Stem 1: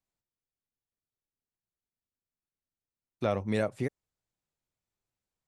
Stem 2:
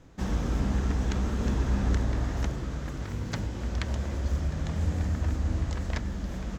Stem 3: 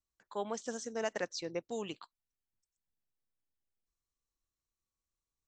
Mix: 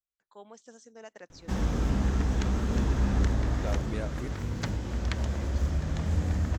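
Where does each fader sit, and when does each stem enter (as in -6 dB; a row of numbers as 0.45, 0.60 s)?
-8.0, +0.5, -11.5 dB; 0.40, 1.30, 0.00 s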